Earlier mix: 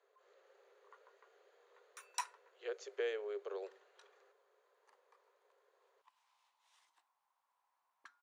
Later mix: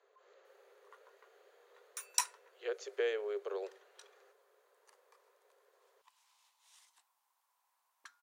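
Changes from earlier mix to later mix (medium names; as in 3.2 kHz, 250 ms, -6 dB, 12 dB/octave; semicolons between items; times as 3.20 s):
speech +4.0 dB; background: remove low-pass 1.6 kHz 6 dB/octave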